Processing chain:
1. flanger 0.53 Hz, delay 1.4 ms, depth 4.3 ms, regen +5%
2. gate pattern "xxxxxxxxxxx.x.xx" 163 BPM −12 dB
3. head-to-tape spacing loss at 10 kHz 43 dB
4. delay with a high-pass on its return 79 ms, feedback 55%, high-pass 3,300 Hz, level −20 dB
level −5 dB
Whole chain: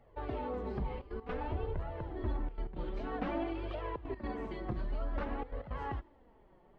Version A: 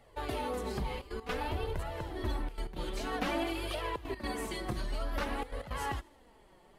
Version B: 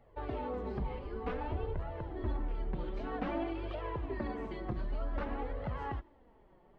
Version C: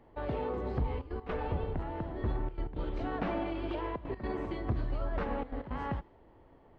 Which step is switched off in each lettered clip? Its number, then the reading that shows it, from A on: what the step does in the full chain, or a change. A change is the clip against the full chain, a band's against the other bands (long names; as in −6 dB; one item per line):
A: 3, 4 kHz band +12.5 dB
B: 2, change in momentary loudness spread −1 LU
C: 1, change in integrated loudness +3.0 LU